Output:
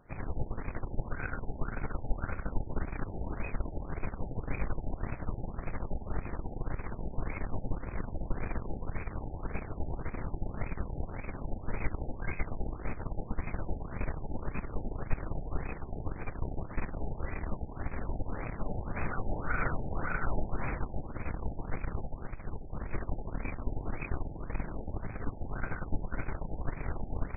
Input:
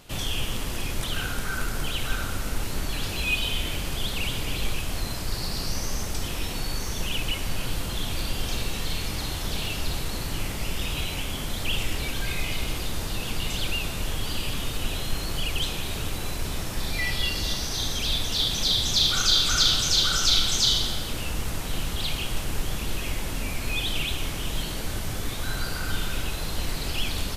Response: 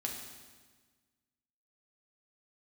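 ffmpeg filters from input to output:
-filter_complex "[0:a]asplit=3[link_01][link_02][link_03];[link_01]afade=type=out:start_time=22.08:duration=0.02[link_04];[link_02]acompressor=threshold=-26dB:ratio=6,afade=type=in:start_time=22.08:duration=0.02,afade=type=out:start_time=22.75:duration=0.02[link_05];[link_03]afade=type=in:start_time=22.75:duration=0.02[link_06];[link_04][link_05][link_06]amix=inputs=3:normalize=0,aeval=exprs='0.473*(cos(1*acos(clip(val(0)/0.473,-1,1)))-cos(1*PI/2))+0.0531*(cos(2*acos(clip(val(0)/0.473,-1,1)))-cos(2*PI/2))+0.0473*(cos(6*acos(clip(val(0)/0.473,-1,1)))-cos(6*PI/2))+0.0376*(cos(7*acos(clip(val(0)/0.473,-1,1)))-cos(7*PI/2))+0.0668*(cos(8*acos(clip(val(0)/0.473,-1,1)))-cos(8*PI/2))':channel_layout=same,afftfilt=real='re*lt(b*sr/1024,870*pow(2600/870,0.5+0.5*sin(2*PI*1.8*pts/sr)))':imag='im*lt(b*sr/1024,870*pow(2600/870,0.5+0.5*sin(2*PI*1.8*pts/sr)))':win_size=1024:overlap=0.75,volume=-1.5dB"

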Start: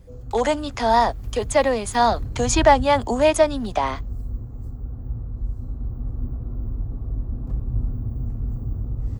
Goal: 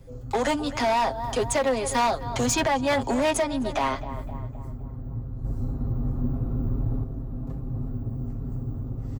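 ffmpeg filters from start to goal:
ffmpeg -i in.wav -filter_complex "[0:a]acrossover=split=140|1400[link_01][link_02][link_03];[link_01]asoftclip=type=tanh:threshold=-30.5dB[link_04];[link_04][link_02][link_03]amix=inputs=3:normalize=0,aecho=1:1:7.5:0.58,asplit=2[link_05][link_06];[link_06]adelay=258,lowpass=frequency=2600:poles=1,volume=-16dB,asplit=2[link_07][link_08];[link_08]adelay=258,lowpass=frequency=2600:poles=1,volume=0.51,asplit=2[link_09][link_10];[link_10]adelay=258,lowpass=frequency=2600:poles=1,volume=0.51,asplit=2[link_11][link_12];[link_12]adelay=258,lowpass=frequency=2600:poles=1,volume=0.51,asplit=2[link_13][link_14];[link_14]adelay=258,lowpass=frequency=2600:poles=1,volume=0.51[link_15];[link_07][link_09][link_11][link_13][link_15]amix=inputs=5:normalize=0[link_16];[link_05][link_16]amix=inputs=2:normalize=0,alimiter=limit=-11.5dB:level=0:latency=1:release=360,volume=19dB,asoftclip=hard,volume=-19dB,asettb=1/sr,asplit=3[link_17][link_18][link_19];[link_17]atrim=end=5.444[link_20];[link_18]atrim=start=5.44:end=7.04,asetpts=PTS-STARTPTS,afade=type=in:duration=0.004:curve=qsin,afade=type=out:start_time=1.596:duration=0.004:curve=qsin,acontrast=50[link_21];[link_19]atrim=start=7.036[link_22];[link_20][link_21]acrossfade=duration=0.004:curve1=hsin:curve2=qsin[link_23];[link_23][link_22]acrossfade=duration=0.004:curve1=qsin:curve2=hsin" out.wav

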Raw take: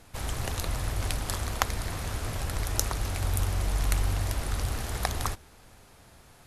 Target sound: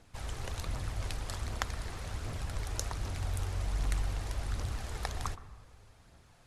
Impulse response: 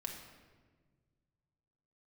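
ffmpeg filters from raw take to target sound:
-filter_complex "[0:a]lowpass=8800,aphaser=in_gain=1:out_gain=1:delay=2.6:decay=0.3:speed=1.3:type=triangular,asplit=2[link_01][link_02];[1:a]atrim=start_sample=2205,lowpass=2000,adelay=120[link_03];[link_02][link_03]afir=irnorm=-1:irlink=0,volume=-11.5dB[link_04];[link_01][link_04]amix=inputs=2:normalize=0,volume=-8dB"

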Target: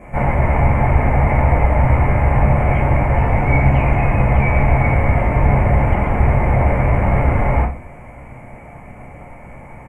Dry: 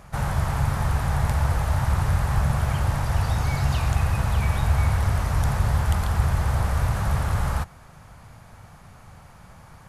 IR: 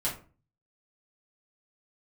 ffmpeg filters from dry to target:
-filter_complex "[0:a]acrossover=split=3800[link_01][link_02];[link_02]acompressor=threshold=-58dB:ratio=4:attack=1:release=60[link_03];[link_01][link_03]amix=inputs=2:normalize=0,firequalizer=gain_entry='entry(170,0);entry(270,12);entry(550,10);entry(1500,-5);entry(2200,14);entry(3700,-27);entry(7900,-3);entry(13000,-9)':delay=0.05:min_phase=1[link_04];[1:a]atrim=start_sample=2205[link_05];[link_04][link_05]afir=irnorm=-1:irlink=0,volume=-1dB"

